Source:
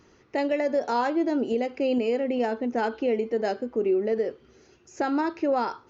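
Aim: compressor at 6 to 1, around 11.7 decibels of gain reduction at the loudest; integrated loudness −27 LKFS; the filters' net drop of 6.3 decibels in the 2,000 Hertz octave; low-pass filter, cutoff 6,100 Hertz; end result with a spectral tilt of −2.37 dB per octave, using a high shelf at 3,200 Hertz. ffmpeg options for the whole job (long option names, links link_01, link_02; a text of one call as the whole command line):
ffmpeg -i in.wav -af "lowpass=6100,equalizer=frequency=2000:width_type=o:gain=-7,highshelf=frequency=3200:gain=-5,acompressor=threshold=-34dB:ratio=6,volume=10.5dB" out.wav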